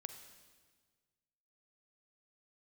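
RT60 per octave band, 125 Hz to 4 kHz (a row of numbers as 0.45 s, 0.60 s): 2.0 s, 1.7 s, 1.6 s, 1.5 s, 1.4 s, 1.4 s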